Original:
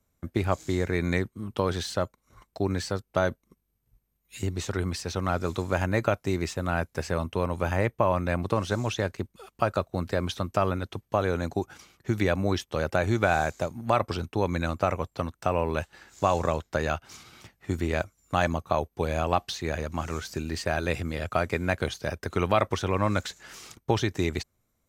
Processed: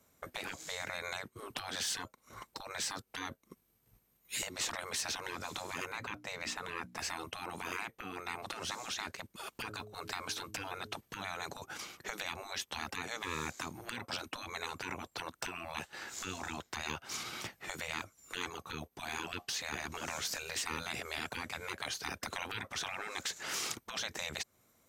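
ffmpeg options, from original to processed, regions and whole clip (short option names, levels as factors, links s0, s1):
-filter_complex "[0:a]asettb=1/sr,asplit=3[s0][s1][s2];[s0]atrim=end=5.924[s3];[s1]atrim=start=5.92:end=6.99,asetpts=PTS-STARTPTS,afade=t=in:d=0.004:c=qsin,afade=t=out:st=1.066:d=0.004:c=qsin,aemphasis=mode=reproduction:type=cd,bandreject=f=60:t=h:w=6,bandreject=f=120:t=h:w=6,bandreject=f=180:t=h:w=6,bandreject=f=240:t=h:w=6,bandreject=f=300:t=h:w=6[s4];[s2]atrim=start=6.986[s5];[s3][s4]acrossfade=d=0.004:c1=hsin:c2=qsin[s6];[s6][s5]acrossfade=d=0.004:c1=qsin:c2=hsin,asettb=1/sr,asplit=3[s7][s8][s9];[s7]atrim=end=9.514[s10];[s8]atrim=start=9.51:end=10.97,asetpts=PTS-STARTPTS,afade=t=in:d=0.004:c=qsin,afade=t=out:st=1.456:d=0.004:c=qsin,bandreject=f=1900:w=19,bandreject=f=105.7:t=h:w=4,bandreject=f=211.4:t=h:w=4,bandreject=f=317.1:t=h:w=4,bandreject=f=422.8:t=h:w=4[s11];[s9]atrim=start=10.966[s12];[s10][s11]acrossfade=d=0.004:c1=hsin:c2=qsin[s13];[s13][s12]acrossfade=d=0.004:c1=qsin:c2=hsin,highpass=f=290:p=1,acompressor=threshold=0.0112:ratio=2.5,afftfilt=real='re*lt(hypot(re,im),0.02)':imag='im*lt(hypot(re,im),0.02)':win_size=1024:overlap=0.75,volume=2.82"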